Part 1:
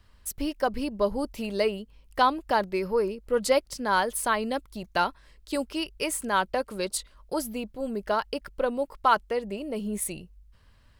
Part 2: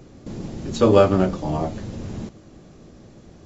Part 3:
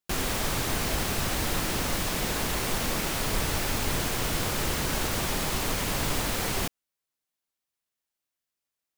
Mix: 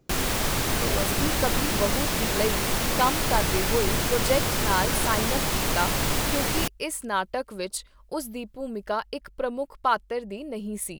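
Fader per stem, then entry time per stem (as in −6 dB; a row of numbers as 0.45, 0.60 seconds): −1.5, −17.5, +3.0 decibels; 0.80, 0.00, 0.00 seconds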